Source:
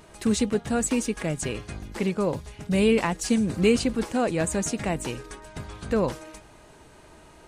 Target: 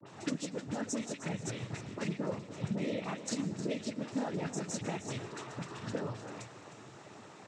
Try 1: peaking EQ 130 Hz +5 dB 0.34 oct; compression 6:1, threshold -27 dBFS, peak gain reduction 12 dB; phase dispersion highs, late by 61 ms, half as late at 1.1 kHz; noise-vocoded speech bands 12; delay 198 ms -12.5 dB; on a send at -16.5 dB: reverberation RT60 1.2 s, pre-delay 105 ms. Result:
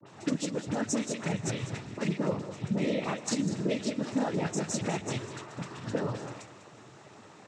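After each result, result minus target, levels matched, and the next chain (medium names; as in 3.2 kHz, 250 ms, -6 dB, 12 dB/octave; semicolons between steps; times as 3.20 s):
echo 111 ms early; compression: peak gain reduction -6 dB
peaking EQ 130 Hz +5 dB 0.34 oct; compression 6:1, threshold -27 dBFS, peak gain reduction 12 dB; phase dispersion highs, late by 61 ms, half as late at 1.1 kHz; noise-vocoded speech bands 12; delay 309 ms -12.5 dB; on a send at -16.5 dB: reverberation RT60 1.2 s, pre-delay 105 ms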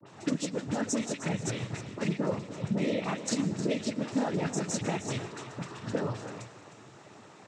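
compression: peak gain reduction -6 dB
peaking EQ 130 Hz +5 dB 0.34 oct; compression 6:1, threshold -34 dBFS, peak gain reduction 17.5 dB; phase dispersion highs, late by 61 ms, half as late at 1.1 kHz; noise-vocoded speech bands 12; delay 309 ms -12.5 dB; on a send at -16.5 dB: reverberation RT60 1.2 s, pre-delay 105 ms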